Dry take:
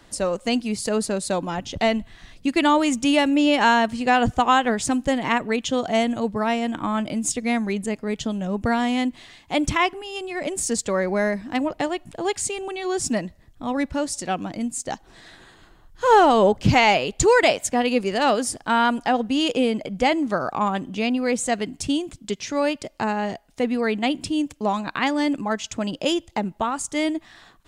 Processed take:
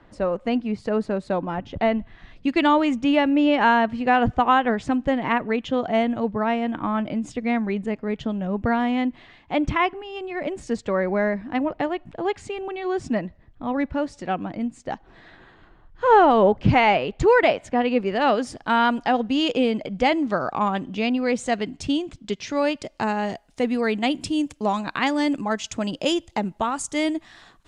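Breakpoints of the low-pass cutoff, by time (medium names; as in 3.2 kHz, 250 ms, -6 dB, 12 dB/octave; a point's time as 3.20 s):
1.95 s 1.9 kHz
2.60 s 3.8 kHz
2.98 s 2.4 kHz
18.02 s 2.4 kHz
18.73 s 4.8 kHz
22.40 s 4.8 kHz
23.27 s 10 kHz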